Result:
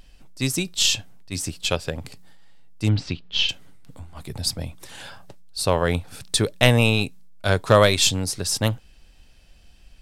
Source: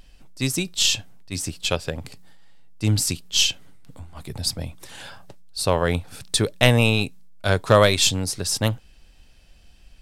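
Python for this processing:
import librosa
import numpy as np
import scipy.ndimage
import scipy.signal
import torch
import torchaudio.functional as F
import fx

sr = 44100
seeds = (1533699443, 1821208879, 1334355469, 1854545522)

y = fx.lowpass(x, sr, hz=3800.0, slope=24, at=(2.89, 3.49))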